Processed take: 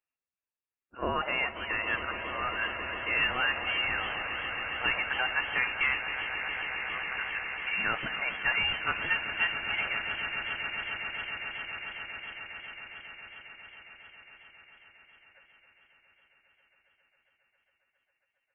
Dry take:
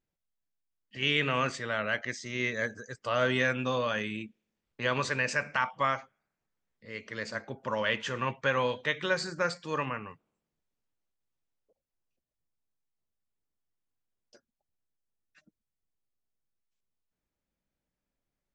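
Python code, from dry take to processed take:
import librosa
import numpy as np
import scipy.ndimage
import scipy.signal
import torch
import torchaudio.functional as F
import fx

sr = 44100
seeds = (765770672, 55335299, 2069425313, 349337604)

y = fx.spec_quant(x, sr, step_db=15)
y = scipy.signal.sosfilt(scipy.signal.cheby1(6, 1.0, 480.0, 'highpass', fs=sr, output='sos'), y)
y = fx.echo_swell(y, sr, ms=136, loudest=8, wet_db=-13.5)
y = fx.freq_invert(y, sr, carrier_hz=3300)
y = fx.echo_warbled(y, sr, ms=273, feedback_pct=45, rate_hz=2.8, cents=192, wet_db=-14.5)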